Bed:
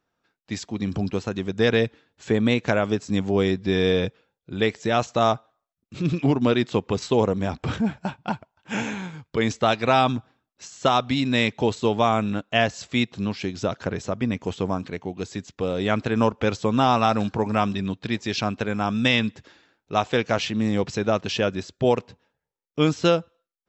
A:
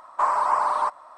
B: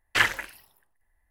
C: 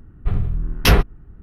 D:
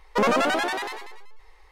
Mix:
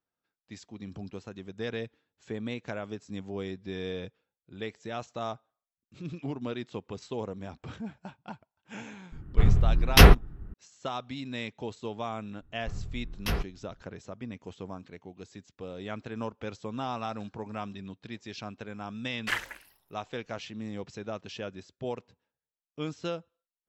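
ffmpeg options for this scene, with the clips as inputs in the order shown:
-filter_complex "[3:a]asplit=2[a][b];[0:a]volume=-15dB[c];[a]atrim=end=1.42,asetpts=PTS-STARTPTS,afade=t=in:d=0.004:c=hsin,afade=t=out:st=1.416:d=0.004:c=hsin,adelay=9120[d];[b]atrim=end=1.42,asetpts=PTS-STARTPTS,volume=-16.5dB,afade=t=in:d=0.004:c=hsin,afade=t=out:st=1.416:d=0.004:c=hsin,adelay=12410[e];[2:a]atrim=end=1.3,asetpts=PTS-STARTPTS,volume=-9dB,afade=t=in:d=0.004:c=hsin,afade=t=out:st=1.296:d=0.004:c=hsin,adelay=19120[f];[c][d][e][f]amix=inputs=4:normalize=0"

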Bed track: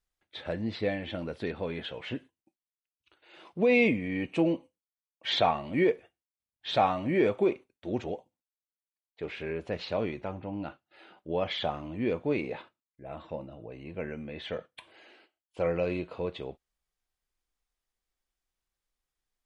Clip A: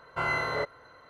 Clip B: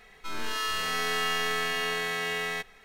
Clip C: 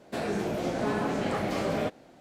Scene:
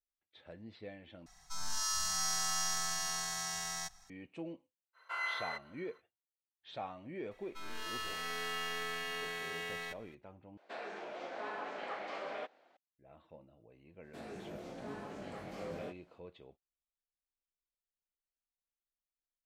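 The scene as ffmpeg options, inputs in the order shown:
-filter_complex "[2:a]asplit=2[a][b];[3:a]asplit=2[c][d];[0:a]volume=-18dB[e];[a]firequalizer=gain_entry='entry(130,0);entry(300,-19);entry(480,-27);entry(710,-2);entry(1400,-6);entry(2400,-16);entry(5600,12);entry(12000,0)':delay=0.05:min_phase=1[f];[1:a]highpass=1.2k[g];[c]highpass=670,lowpass=3.4k[h];[d]flanger=delay=19.5:depth=2.8:speed=1.8[i];[e]asplit=3[j][k][l];[j]atrim=end=1.264[m];[f]atrim=end=2.84,asetpts=PTS-STARTPTS,volume=-3.5dB[n];[k]atrim=start=4.096:end=10.574[o];[h]atrim=end=2.2,asetpts=PTS-STARTPTS,volume=-7.5dB[p];[l]atrim=start=12.766[q];[g]atrim=end=1.09,asetpts=PTS-STARTPTS,volume=-6.5dB,afade=t=in:d=0.05,afade=t=out:st=1.04:d=0.05,adelay=217413S[r];[b]atrim=end=2.84,asetpts=PTS-STARTPTS,volume=-10.5dB,afade=t=in:d=0.004:c=hsin,afade=t=out:st=2.836:d=0.004:c=hsin,adelay=7310[s];[i]atrim=end=2.2,asetpts=PTS-STARTPTS,volume=-13.5dB,afade=t=in:d=0.05,afade=t=out:st=2.15:d=0.05,adelay=14010[t];[m][n]acrossfade=d=0.004:c1=hsin:c2=hsin[u];[u][o]acrossfade=d=0.004:c1=hsin:c2=hsin[v];[v][p]acrossfade=d=0.004:c1=hsin:c2=hsin[w];[w][q]acrossfade=d=0.004:c1=hsin:c2=hsin[x];[x][r][s][t]amix=inputs=4:normalize=0"

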